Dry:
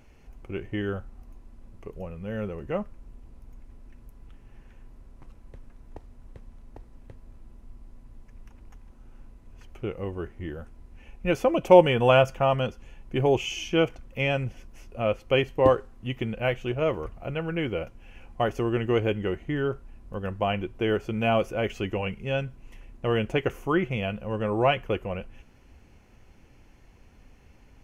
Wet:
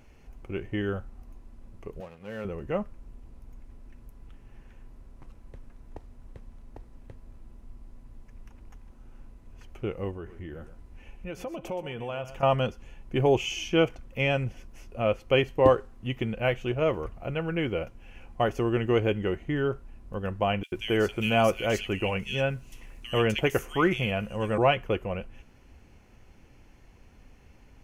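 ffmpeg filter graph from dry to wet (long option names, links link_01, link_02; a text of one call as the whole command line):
ffmpeg -i in.wav -filter_complex "[0:a]asettb=1/sr,asplit=3[link_01][link_02][link_03];[link_01]atrim=end=2.004[link_04];[link_02]atrim=start=2:end=2.45,asetpts=PTS-STARTPTS,afade=type=in:duration=0.004:curve=qsin,afade=type=out:start_time=0.446:duration=0.004:curve=qsin,highpass=95,lowshelf=frequency=310:gain=-8.5,aeval=exprs='sgn(val(0))*max(abs(val(0))-0.00282,0)':channel_layout=same[link_05];[link_03]atrim=start=2.446[link_06];[link_04][link_05]acrossfade=duration=0.004:curve1=hsin:curve2=qsin[link_07];[link_07][link_06]acrossfade=duration=0.004:curve1=qsin:curve2=hsin,asettb=1/sr,asplit=3[link_08][link_09][link_10];[link_08]atrim=end=10.114[link_11];[link_09]atrim=start=10.11:end=12.43,asetpts=PTS-STARTPTS,afade=type=in:duration=0.004:curve=qsin,afade=type=out:start_time=2.316:duration=0.004:curve=qsin,acompressor=threshold=-37dB:ratio=3:attack=3.2:release=140:knee=1:detection=peak,aecho=1:1:123:0.237,atrim=end_sample=102312[link_12];[link_10]atrim=start=12.426[link_13];[link_11][link_12]acrossfade=duration=0.004:curve1=hsin:curve2=qsin[link_14];[link_14][link_13]acrossfade=duration=0.004:curve1=qsin:curve2=hsin,asettb=1/sr,asplit=3[link_15][link_16][link_17];[link_15]atrim=end=20.634[link_18];[link_16]atrim=start=20.63:end=24.58,asetpts=PTS-STARTPTS,afade=type=in:duration=0.004:curve=qsin,afade=type=out:start_time=3.946:duration=0.004:curve=qsin,highshelf=frequency=2300:gain=11.5,acrossover=split=2500[link_19][link_20];[link_19]adelay=90[link_21];[link_21][link_20]amix=inputs=2:normalize=0,atrim=end_sample=174195[link_22];[link_17]atrim=start=24.576[link_23];[link_18][link_22]acrossfade=duration=0.004:curve1=hsin:curve2=qsin[link_24];[link_24][link_23]acrossfade=duration=0.004:curve1=qsin:curve2=hsin" out.wav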